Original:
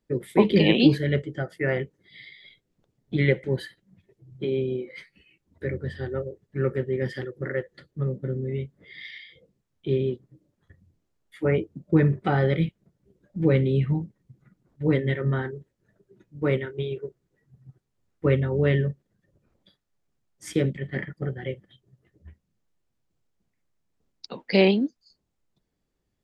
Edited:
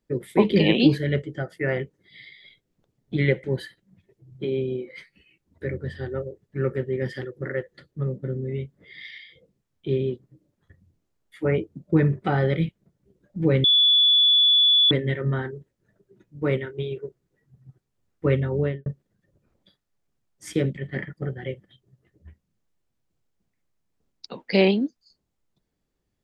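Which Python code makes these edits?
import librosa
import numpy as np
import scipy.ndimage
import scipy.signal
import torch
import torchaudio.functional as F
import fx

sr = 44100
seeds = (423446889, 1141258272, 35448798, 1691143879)

y = fx.studio_fade_out(x, sr, start_s=18.55, length_s=0.31)
y = fx.edit(y, sr, fx.bleep(start_s=13.64, length_s=1.27, hz=3440.0, db=-14.0), tone=tone)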